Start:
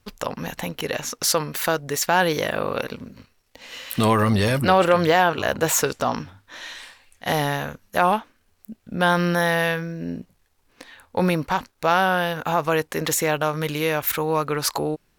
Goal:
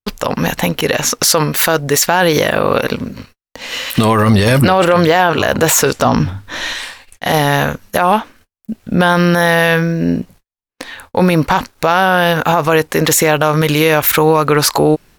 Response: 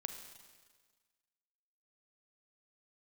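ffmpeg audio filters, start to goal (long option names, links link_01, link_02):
-filter_complex "[0:a]asettb=1/sr,asplit=3[link_01][link_02][link_03];[link_01]atrim=end=6.054[link_04];[link_02]atrim=start=6.05:end=6.73,asetpts=PTS-STARTPTS,afade=type=in:duration=0.004:curve=qsin,afade=type=out:start_time=0.676:duration=0.004:curve=qsin,lowshelf=frequency=260:gain=10[link_05];[link_03]atrim=start=6.726[link_06];[link_04][link_05]acrossfade=duration=0.004:curve1=hsin:curve2=qsin[link_07];[link_07][link_06]acrossfade=duration=0.004:curve1=qsin:curve2=hsin,agate=range=-47dB:threshold=-53dB:ratio=16:detection=peak,alimiter=level_in=16dB:limit=-1dB:release=50:level=0:latency=1,volume=-1dB"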